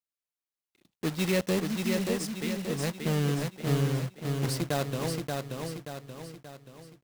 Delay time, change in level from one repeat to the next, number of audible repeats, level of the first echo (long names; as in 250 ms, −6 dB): 580 ms, −6.5 dB, 5, −4.0 dB